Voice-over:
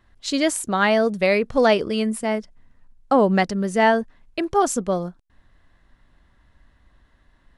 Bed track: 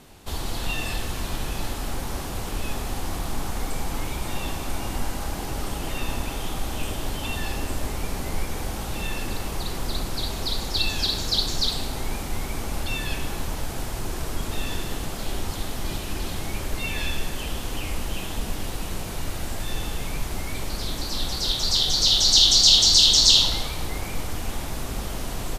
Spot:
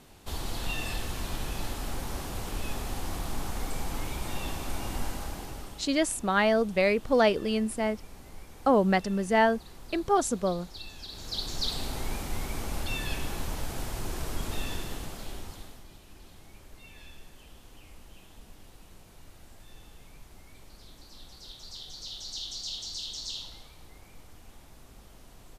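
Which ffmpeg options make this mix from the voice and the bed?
-filter_complex "[0:a]adelay=5550,volume=-5.5dB[a];[1:a]volume=9.5dB,afade=t=out:st=5.06:d=0.81:silence=0.199526,afade=t=in:st=11.08:d=0.81:silence=0.188365,afade=t=out:st=14.54:d=1.32:silence=0.133352[b];[a][b]amix=inputs=2:normalize=0"

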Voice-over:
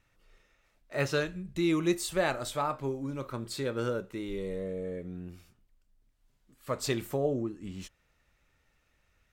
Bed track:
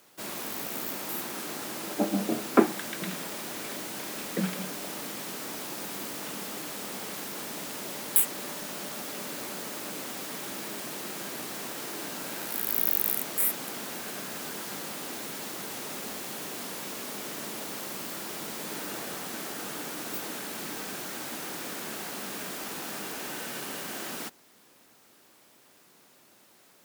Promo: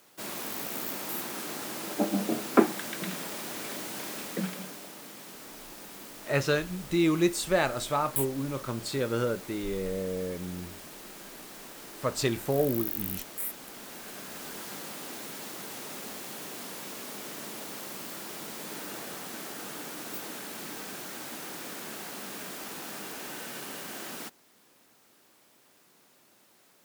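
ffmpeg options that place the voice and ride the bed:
-filter_complex "[0:a]adelay=5350,volume=3dB[a];[1:a]volume=5dB,afade=t=out:st=4.05:d=0.87:silence=0.398107,afade=t=in:st=13.65:d=0.96:silence=0.530884[b];[a][b]amix=inputs=2:normalize=0"

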